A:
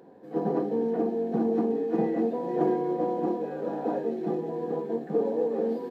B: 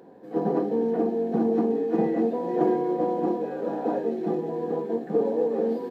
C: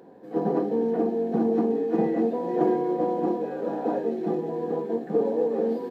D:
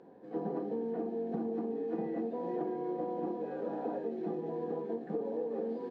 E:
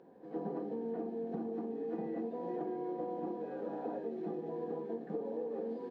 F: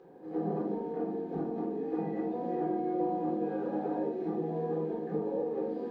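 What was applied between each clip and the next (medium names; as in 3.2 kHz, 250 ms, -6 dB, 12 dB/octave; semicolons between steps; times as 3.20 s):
hum notches 50/100/150 Hz; trim +2.5 dB
no audible change
compression, threshold -26 dBFS, peak gain reduction 9 dB; distance through air 100 m; trim -6 dB
pre-echo 108 ms -15.5 dB; trim -3 dB
simulated room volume 660 m³, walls furnished, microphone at 3.9 m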